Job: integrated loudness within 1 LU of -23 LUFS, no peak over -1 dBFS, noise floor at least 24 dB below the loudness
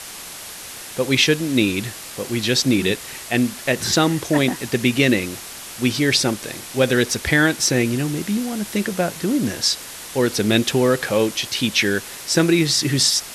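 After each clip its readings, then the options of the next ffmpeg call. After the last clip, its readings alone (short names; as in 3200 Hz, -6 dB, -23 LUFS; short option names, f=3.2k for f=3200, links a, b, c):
noise floor -36 dBFS; noise floor target -44 dBFS; loudness -19.5 LUFS; peak -3.0 dBFS; loudness target -23.0 LUFS
-> -af "afftdn=nr=8:nf=-36"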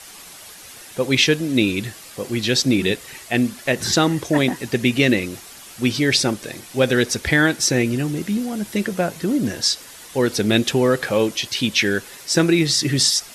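noise floor -41 dBFS; noise floor target -44 dBFS
-> -af "afftdn=nr=6:nf=-41"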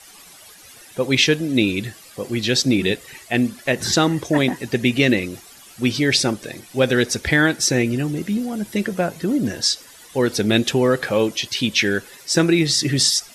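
noise floor -45 dBFS; loudness -19.5 LUFS; peak -3.0 dBFS; loudness target -23.0 LUFS
-> -af "volume=-3.5dB"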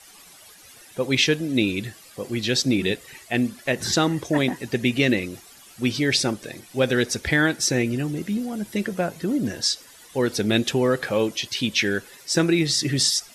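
loudness -23.0 LUFS; peak -6.5 dBFS; noise floor -48 dBFS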